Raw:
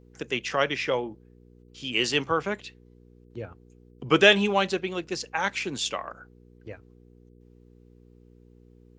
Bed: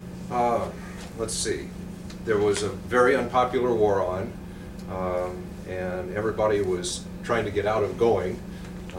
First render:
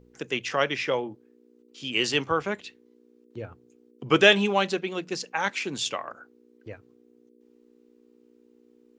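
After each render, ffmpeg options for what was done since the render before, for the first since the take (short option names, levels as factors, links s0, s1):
-af "bandreject=f=60:t=h:w=4,bandreject=f=120:t=h:w=4,bandreject=f=180:t=h:w=4"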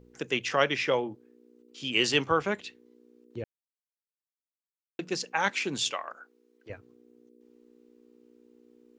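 -filter_complex "[0:a]asettb=1/sr,asplit=3[s0][s1][s2];[s0]atrim=end=5.914[s3];[s1]atrim=start=5.91:end=6.7,asetpts=PTS-STARTPTS,afade=t=in:d=0.004:c=qsin,afade=t=out:st=0.786:d=0.004:c=qsin,highpass=f=730:p=1[s4];[s2]atrim=start=6.696[s5];[s3][s4]acrossfade=d=0.004:c1=hsin:c2=qsin[s6];[s6][s5]acrossfade=d=0.004:c1=qsin:c2=hsin,asplit=3[s7][s8][s9];[s7]atrim=end=3.44,asetpts=PTS-STARTPTS,afade=t=out:st=3.436:d=0.004:c=hsin[s10];[s8]atrim=start=3.44:end=4.99,asetpts=PTS-STARTPTS,volume=0[s11];[s9]atrim=start=4.99,asetpts=PTS-STARTPTS,afade=t=in:d=0.004:c=hsin[s12];[s10][s11][s12]concat=n=3:v=0:a=1"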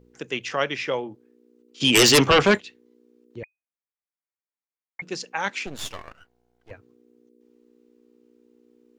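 -filter_complex "[0:a]asplit=3[s0][s1][s2];[s0]afade=t=out:st=1.8:d=0.02[s3];[s1]aeval=exprs='0.316*sin(PI/2*3.98*val(0)/0.316)':c=same,afade=t=in:st=1.8:d=0.02,afade=t=out:st=2.57:d=0.02[s4];[s2]afade=t=in:st=2.57:d=0.02[s5];[s3][s4][s5]amix=inputs=3:normalize=0,asettb=1/sr,asplit=3[s6][s7][s8];[s6]atrim=end=3.434[s9];[s7]atrim=start=3.43:end=5.02,asetpts=PTS-STARTPTS,afade=t=in:d=0.004:c=qsin,afade=t=out:st=1.586:d=0.004:c=qsin,lowpass=f=2100:t=q:w=0.5098,lowpass=f=2100:t=q:w=0.6013,lowpass=f=2100:t=q:w=0.9,lowpass=f=2100:t=q:w=2.563,afreqshift=-2500[s10];[s8]atrim=start=5.016[s11];[s9][s10]acrossfade=d=0.004:c1=hsin:c2=qsin[s12];[s12][s11]acrossfade=d=0.004:c1=qsin:c2=hsin,asettb=1/sr,asplit=3[s13][s14][s15];[s13]atrim=end=5.664[s16];[s14]atrim=start=5.66:end=6.71,asetpts=PTS-STARTPTS,afade=t=in:d=0.004:c=qsin,afade=t=out:st=1.046:d=0.004:c=qsin,aeval=exprs='max(val(0),0)':c=same[s17];[s15]atrim=start=6.706[s18];[s16][s17]acrossfade=d=0.004:c1=hsin:c2=qsin[s19];[s19][s18]acrossfade=d=0.004:c1=qsin:c2=hsin"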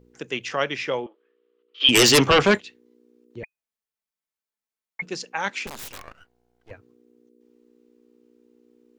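-filter_complex "[0:a]asettb=1/sr,asplit=3[s0][s1][s2];[s0]atrim=end=1.064[s3];[s1]atrim=start=1.06:end=1.89,asetpts=PTS-STARTPTS,afade=t=in:d=0.004:c=qsin,afade=t=out:st=0.826:d=0.004:c=qsin,highpass=f=490:w=0.5412,highpass=f=490:w=1.3066,equalizer=f=810:t=q:w=4:g=-9,equalizer=f=1200:t=q:w=4:g=9,equalizer=f=1800:t=q:w=4:g=3,equalizer=f=3100:t=q:w=4:g=8,lowpass=f=3600:w=0.5412,lowpass=f=3600:w=1.3066[s4];[s2]atrim=start=1.886[s5];[s3][s4]acrossfade=d=0.004:c1=hsin:c2=qsin[s6];[s6][s5]acrossfade=d=0.004:c1=qsin:c2=hsin,asettb=1/sr,asplit=3[s7][s8][s9];[s7]atrim=end=3.424[s10];[s8]atrim=start=3.42:end=5.06,asetpts=PTS-STARTPTS,afade=t=in:d=0.004:c=qsin,afade=t=out:st=1.636:d=0.004:c=qsin,aecho=1:1:4.6:0.78,atrim=end_sample=72324[s11];[s9]atrim=start=5.056[s12];[s10][s11]acrossfade=d=0.004:c1=hsin:c2=qsin[s13];[s13][s12]acrossfade=d=0.004:c1=qsin:c2=hsin,asettb=1/sr,asplit=3[s14][s15][s16];[s14]atrim=end=5.674[s17];[s15]atrim=start=5.67:end=6.07,asetpts=PTS-STARTPTS,afade=t=in:d=0.004:c=qsin,afade=t=out:st=0.396:d=0.004:c=qsin,aeval=exprs='(mod(26.6*val(0)+1,2)-1)/26.6':c=same[s18];[s16]atrim=start=6.066[s19];[s17][s18]acrossfade=d=0.004:c1=hsin:c2=qsin[s20];[s20][s19]acrossfade=d=0.004:c1=qsin:c2=hsin"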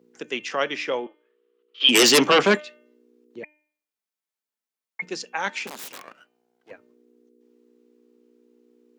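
-af "highpass=f=190:w=0.5412,highpass=f=190:w=1.3066,bandreject=f=301.9:t=h:w=4,bandreject=f=603.8:t=h:w=4,bandreject=f=905.7:t=h:w=4,bandreject=f=1207.6:t=h:w=4,bandreject=f=1509.5:t=h:w=4,bandreject=f=1811.4:t=h:w=4,bandreject=f=2113.3:t=h:w=4,bandreject=f=2415.2:t=h:w=4,bandreject=f=2717.1:t=h:w=4,bandreject=f=3019:t=h:w=4,bandreject=f=3320.9:t=h:w=4"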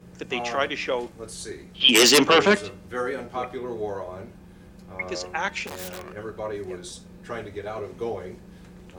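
-filter_complex "[1:a]volume=0.355[s0];[0:a][s0]amix=inputs=2:normalize=0"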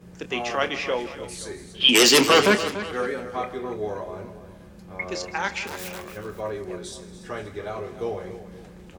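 -filter_complex "[0:a]asplit=2[s0][s1];[s1]adelay=28,volume=0.251[s2];[s0][s2]amix=inputs=2:normalize=0,asplit=2[s3][s4];[s4]aecho=0:1:160|287|524:0.141|0.224|0.106[s5];[s3][s5]amix=inputs=2:normalize=0"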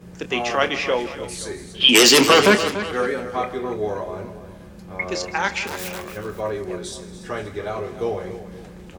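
-af "volume=1.68,alimiter=limit=0.708:level=0:latency=1"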